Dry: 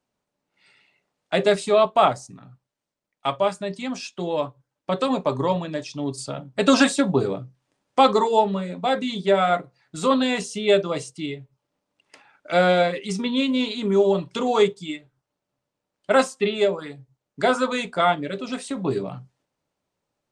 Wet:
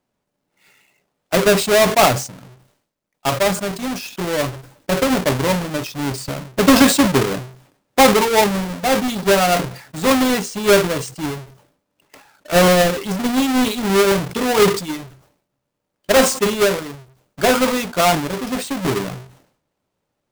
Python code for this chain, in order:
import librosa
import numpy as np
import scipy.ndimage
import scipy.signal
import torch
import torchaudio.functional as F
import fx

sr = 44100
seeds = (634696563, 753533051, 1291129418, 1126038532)

y = fx.halfwave_hold(x, sr)
y = fx.sustainer(y, sr, db_per_s=98.0)